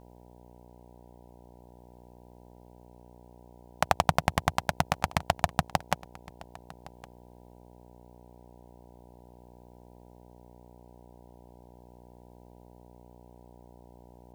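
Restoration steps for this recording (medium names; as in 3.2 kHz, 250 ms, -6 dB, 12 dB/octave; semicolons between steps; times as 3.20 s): de-hum 60.4 Hz, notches 16; inverse comb 1113 ms -21.5 dB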